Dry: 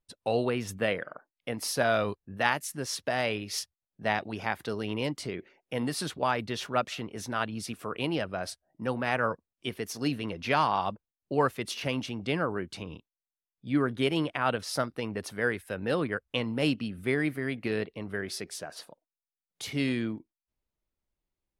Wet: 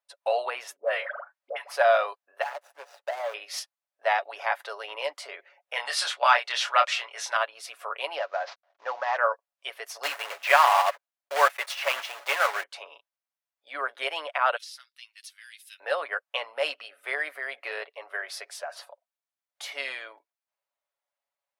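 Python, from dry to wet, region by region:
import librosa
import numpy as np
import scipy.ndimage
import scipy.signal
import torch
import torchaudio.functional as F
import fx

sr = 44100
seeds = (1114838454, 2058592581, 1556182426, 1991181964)

y = fx.chain(x, sr, fx.high_shelf(hz=4500.0, db=-5.0),
    fx.dispersion(late='highs', ms=94.0, hz=860.0),
    fx.band_squash(depth_pct=40), at=(0.76, 1.76))
y = fx.chain(y, sr, fx.median_filter(points=41),
    fx.highpass(hz=250.0, slope=12),
    fx.low_shelf(hz=360.0, db=-5.5), at=(2.42, 3.34))
y = fx.chain(y, sr, fx.lowpass(hz=7900.0, slope=12),
    fx.tilt_shelf(db=-9.5, hz=810.0),
    fx.doubler(ms=25.0, db=-5.5), at=(5.73, 7.37))
y = fx.chain(y, sr, fx.cvsd(bps=32000),
    fx.high_shelf(hz=5000.0, db=-8.5), at=(8.19, 9.17))
y = fx.chain(y, sr, fx.block_float(bits=3),
    fx.dynamic_eq(hz=2000.0, q=1.1, threshold_db=-43.0, ratio=4.0, max_db=6), at=(10.03, 12.64))
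y = fx.chain(y, sr, fx.ladder_highpass(hz=2800.0, resonance_pct=25),
    fx.band_squash(depth_pct=100), at=(14.56, 15.8))
y = scipy.signal.sosfilt(scipy.signal.ellip(4, 1.0, 70, 590.0, 'highpass', fs=sr, output='sos'), y)
y = fx.high_shelf(y, sr, hz=2600.0, db=-9.0)
y = y + 0.46 * np.pad(y, (int(7.1 * sr / 1000.0), 0))[:len(y)]
y = y * librosa.db_to_amplitude(6.5)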